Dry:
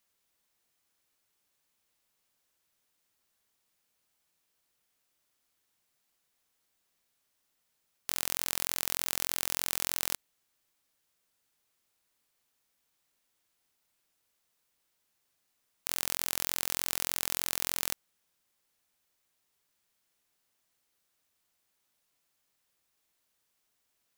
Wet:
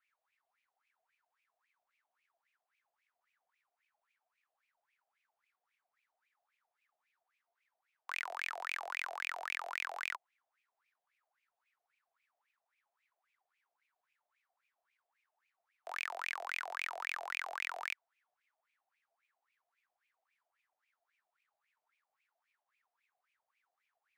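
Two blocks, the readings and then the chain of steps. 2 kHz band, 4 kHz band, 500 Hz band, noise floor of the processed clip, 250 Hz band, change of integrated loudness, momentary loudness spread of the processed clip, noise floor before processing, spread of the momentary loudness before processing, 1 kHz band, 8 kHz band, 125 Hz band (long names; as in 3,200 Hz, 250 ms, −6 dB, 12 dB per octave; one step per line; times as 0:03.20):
+3.0 dB, −11.0 dB, −2.5 dB, below −85 dBFS, below −25 dB, −8.0 dB, 5 LU, −78 dBFS, 5 LU, +2.5 dB, −22.0 dB, below −40 dB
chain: high-pass filter 250 Hz 24 dB per octave
LFO wah 3.7 Hz 580–2,400 Hz, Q 12
frequency shifter +92 Hz
level +14 dB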